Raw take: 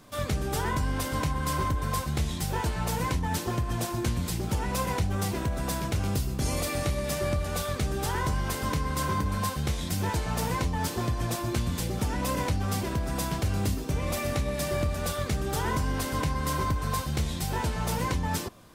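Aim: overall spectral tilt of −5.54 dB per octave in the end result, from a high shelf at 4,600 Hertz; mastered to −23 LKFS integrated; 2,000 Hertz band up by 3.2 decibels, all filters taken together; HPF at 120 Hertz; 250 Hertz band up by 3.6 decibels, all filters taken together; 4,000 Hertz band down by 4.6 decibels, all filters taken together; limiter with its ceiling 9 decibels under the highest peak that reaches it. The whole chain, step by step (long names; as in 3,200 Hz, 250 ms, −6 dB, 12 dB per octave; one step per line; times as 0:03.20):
high-pass filter 120 Hz
parametric band 250 Hz +5.5 dB
parametric band 2,000 Hz +6 dB
parametric band 4,000 Hz −4.5 dB
high-shelf EQ 4,600 Hz −6.5 dB
level +9 dB
brickwall limiter −13.5 dBFS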